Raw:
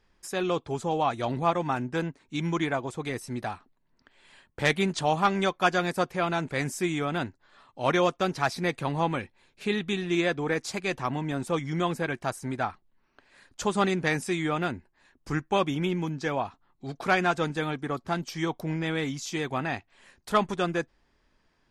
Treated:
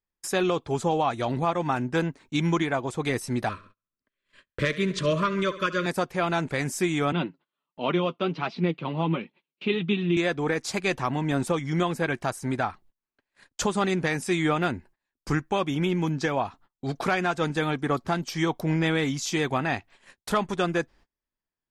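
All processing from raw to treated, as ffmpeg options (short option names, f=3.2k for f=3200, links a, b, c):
-filter_complex "[0:a]asettb=1/sr,asplit=3[a][b][c];[a]atrim=end=3.494[d];[b]atrim=start=3.49:end=5.86,asetpts=PTS-STARTPTS,afade=t=in:d=0.004:c=qsin,afade=t=out:st=2.366:d=0.004:c=qsin,asuperstop=centerf=800:order=20:qfactor=2.5,highshelf=f=7.5k:g=-11,aecho=1:1:69|138|207|276|345|414:0.15|0.0883|0.0521|0.0307|0.0181|0.0107,atrim=end_sample=104517[e];[c]atrim=start=5.856[f];[d][e]acrossfade=d=0.004:c1=hsin:c2=qsin[g];[g][f]acrossfade=d=0.004:c1=qsin:c2=hsin,asettb=1/sr,asplit=3[h][i][j];[h]atrim=end=7.124[k];[i]atrim=start=7.12:end=10.17,asetpts=PTS-STARTPTS,afade=t=in:d=0.004:c=qsin,afade=t=out:st=3.046:d=0.004:c=qsin,flanger=delay=4:depth=5:regen=41:speed=1.4:shape=triangular,highpass=f=150:w=0.5412,highpass=f=150:w=1.3066,equalizer=f=170:t=q:w=4:g=7,equalizer=f=320:t=q:w=4:g=5,equalizer=f=760:t=q:w=4:g=-6,equalizer=f=1.7k:t=q:w=4:g=-9,equalizer=f=2.9k:t=q:w=4:g=6,lowpass=f=3.8k:w=0.5412,lowpass=f=3.8k:w=1.3066[l];[j]atrim=start=10.166[m];[k][l]acrossfade=d=0.004:c1=hsin:c2=qsin[n];[n][m]acrossfade=d=0.004:c1=qsin:c2=hsin,agate=range=-31dB:threshold=-54dB:ratio=16:detection=peak,alimiter=limit=-21dB:level=0:latency=1:release=405,volume=6.5dB"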